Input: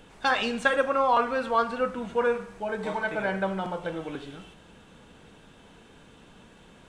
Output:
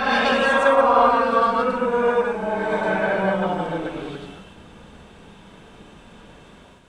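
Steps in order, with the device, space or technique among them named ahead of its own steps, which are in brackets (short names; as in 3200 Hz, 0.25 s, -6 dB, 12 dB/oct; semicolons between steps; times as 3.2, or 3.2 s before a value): reverse reverb (reverse; reverb RT60 1.8 s, pre-delay 92 ms, DRR -6.5 dB; reverse)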